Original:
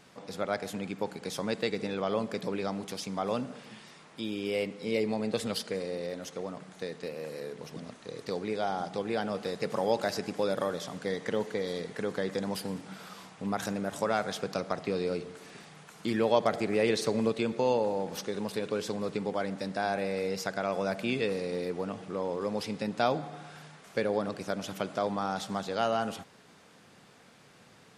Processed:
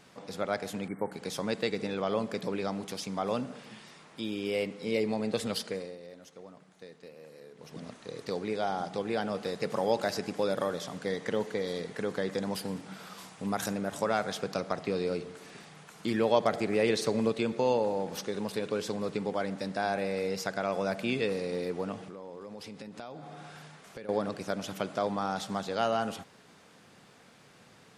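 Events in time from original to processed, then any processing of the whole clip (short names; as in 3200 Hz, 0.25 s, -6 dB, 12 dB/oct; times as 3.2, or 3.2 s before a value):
0.88–1.12 spectral delete 2300–7800 Hz
5.67–7.84 dip -11.5 dB, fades 0.30 s
13.17–13.74 high shelf 5800 Hz -> 9100 Hz +9.5 dB
22.04–24.09 compressor 5:1, threshold -41 dBFS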